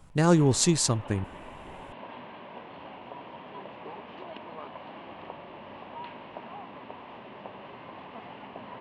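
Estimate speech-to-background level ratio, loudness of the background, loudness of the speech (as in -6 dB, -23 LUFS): 20.0 dB, -44.0 LUFS, -24.0 LUFS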